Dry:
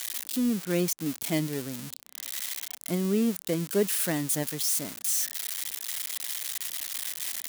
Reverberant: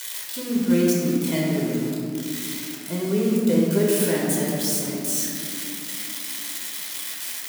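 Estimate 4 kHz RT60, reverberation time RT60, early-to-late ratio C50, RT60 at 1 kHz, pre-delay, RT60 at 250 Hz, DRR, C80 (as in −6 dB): 1.2 s, 2.7 s, −1.0 dB, 2.4 s, 10 ms, 4.4 s, −4.5 dB, 0.5 dB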